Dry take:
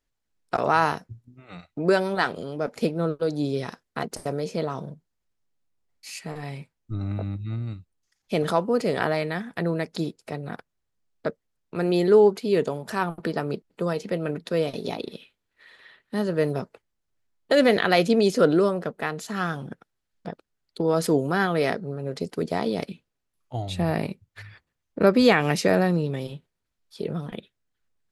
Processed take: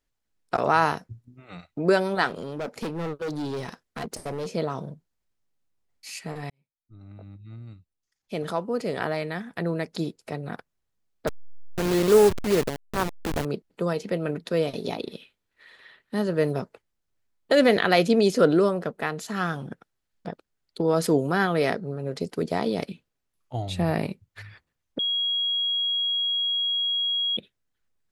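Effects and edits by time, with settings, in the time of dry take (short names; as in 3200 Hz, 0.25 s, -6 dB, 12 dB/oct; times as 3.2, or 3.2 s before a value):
2.28–4.48 hard clip -27.5 dBFS
6.5–10.4 fade in
11.27–13.45 level-crossing sampler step -22 dBFS
24.99–27.37 bleep 3300 Hz -22.5 dBFS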